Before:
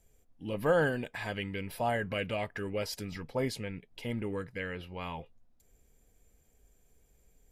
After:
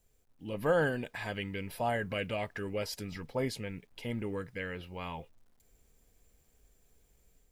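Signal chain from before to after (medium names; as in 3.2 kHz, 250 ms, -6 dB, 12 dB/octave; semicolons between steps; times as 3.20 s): bit crusher 12-bit; level rider gain up to 4.5 dB; trim -5.5 dB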